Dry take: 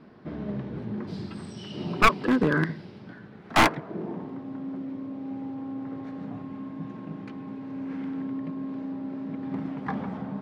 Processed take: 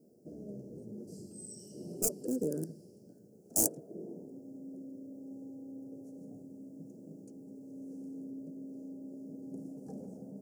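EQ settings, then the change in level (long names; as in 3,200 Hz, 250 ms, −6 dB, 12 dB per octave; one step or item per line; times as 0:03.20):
elliptic band-stop filter 520–7,100 Hz, stop band 40 dB
spectral tilt +4.5 dB per octave
−2.0 dB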